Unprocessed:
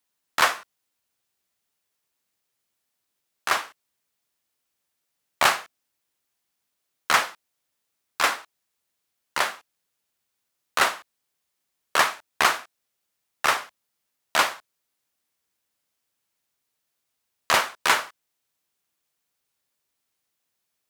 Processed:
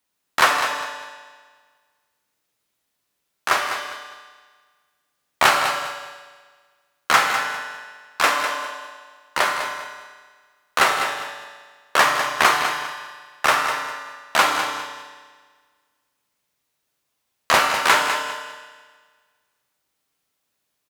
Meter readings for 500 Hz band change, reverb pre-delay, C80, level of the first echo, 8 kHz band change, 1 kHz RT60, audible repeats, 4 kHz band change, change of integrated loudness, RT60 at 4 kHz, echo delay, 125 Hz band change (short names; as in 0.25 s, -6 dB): +6.0 dB, 7 ms, 4.0 dB, -9.0 dB, +3.0 dB, 1.6 s, 2, +4.5 dB, +3.5 dB, 1.5 s, 0.201 s, +6.5 dB